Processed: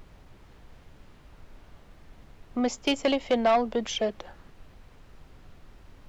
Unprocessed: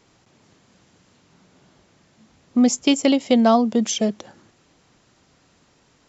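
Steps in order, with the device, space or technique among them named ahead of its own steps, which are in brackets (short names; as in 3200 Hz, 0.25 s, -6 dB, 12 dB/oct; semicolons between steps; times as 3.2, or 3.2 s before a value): aircraft cabin announcement (BPF 460–3200 Hz; soft clip -15.5 dBFS, distortion -13 dB; brown noise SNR 17 dB)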